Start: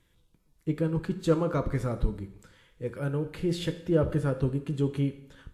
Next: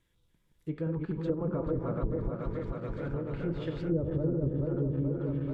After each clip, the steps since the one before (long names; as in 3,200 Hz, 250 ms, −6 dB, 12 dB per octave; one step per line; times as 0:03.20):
feedback delay that plays each chunk backwards 216 ms, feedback 84%, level −3 dB
treble cut that deepens with the level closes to 500 Hz, closed at −18.5 dBFS
level −6.5 dB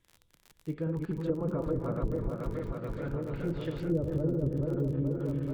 surface crackle 52 per second −40 dBFS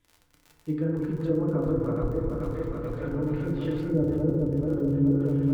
feedback delay network reverb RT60 1.2 s, low-frequency decay 1.1×, high-frequency decay 0.35×, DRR 0 dB